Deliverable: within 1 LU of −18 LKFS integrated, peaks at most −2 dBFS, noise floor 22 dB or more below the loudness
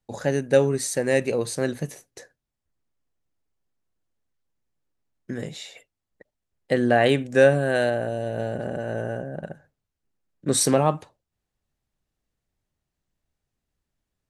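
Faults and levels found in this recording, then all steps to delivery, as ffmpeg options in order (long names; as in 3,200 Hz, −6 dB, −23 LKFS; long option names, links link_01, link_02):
integrated loudness −23.0 LKFS; sample peak −5.0 dBFS; target loudness −18.0 LKFS
→ -af "volume=5dB,alimiter=limit=-2dB:level=0:latency=1"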